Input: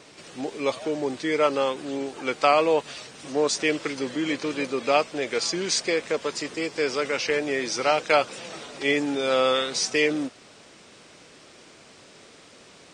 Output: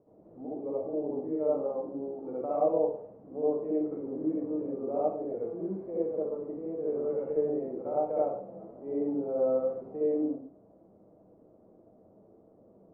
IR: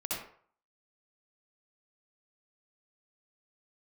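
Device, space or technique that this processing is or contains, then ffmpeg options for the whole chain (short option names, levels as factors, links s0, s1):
next room: -filter_complex "[0:a]asettb=1/sr,asplit=3[s0][s1][s2];[s0]atrim=end=6.854[s3];[s1]atrim=start=6.85:end=7.56,asetpts=PTS-STARTPTS,afade=t=in:d=0.004:c=qsin,afade=t=out:st=0.706:d=0.004:c=qsin,asplit=2[s4][s5];[s5]adelay=13,volume=0.631[s6];[s4][s6]amix=inputs=2:normalize=0,atrim=end_sample=31311[s7];[s2]atrim=start=7.556[s8];[s3][s7]acrossfade=d=0.004:c1=hsin:c2=qsin[s9];[s9][s8]acrossfade=d=0.004:c1=qsin:c2=hsin,lowpass=f=670:w=0.5412,lowpass=f=670:w=1.3066[s10];[1:a]atrim=start_sample=2205[s11];[s10][s11]afir=irnorm=-1:irlink=0,volume=0.376"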